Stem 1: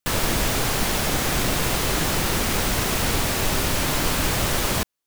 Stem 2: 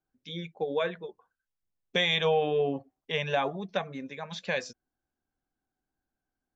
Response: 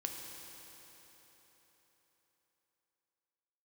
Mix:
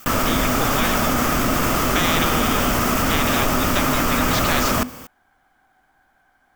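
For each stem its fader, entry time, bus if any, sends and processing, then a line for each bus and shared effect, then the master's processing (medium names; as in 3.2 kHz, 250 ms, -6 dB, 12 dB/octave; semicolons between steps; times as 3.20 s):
-2.5 dB, 0.00 s, send -13 dB, graphic EQ with 31 bands 250 Hz +11 dB, 630 Hz +5 dB, 1.25 kHz +11 dB, 4 kHz -9 dB, 10 kHz -7 dB, 16 kHz +4 dB; level flattener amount 70%
-4.0 dB, 0.00 s, no send, high-order bell 1.4 kHz +13.5 dB 2.6 oct; band-stop 2.7 kHz, Q 5.1; spectrum-flattening compressor 4:1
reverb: on, RT60 4.2 s, pre-delay 3 ms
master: none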